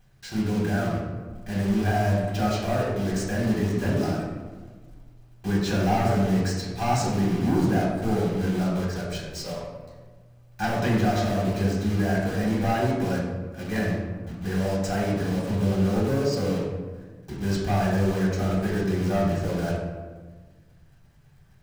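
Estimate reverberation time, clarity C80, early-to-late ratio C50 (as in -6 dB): 1.4 s, 3.0 dB, 1.0 dB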